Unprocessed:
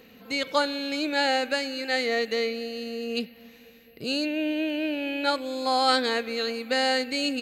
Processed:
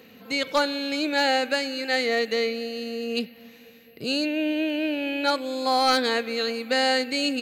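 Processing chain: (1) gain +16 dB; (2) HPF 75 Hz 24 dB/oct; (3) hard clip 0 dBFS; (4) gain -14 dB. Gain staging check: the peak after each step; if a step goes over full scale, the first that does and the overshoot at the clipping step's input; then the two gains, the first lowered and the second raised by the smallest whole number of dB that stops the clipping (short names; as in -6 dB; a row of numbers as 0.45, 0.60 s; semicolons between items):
+8.0, +8.5, 0.0, -14.0 dBFS; step 1, 8.5 dB; step 1 +7 dB, step 4 -5 dB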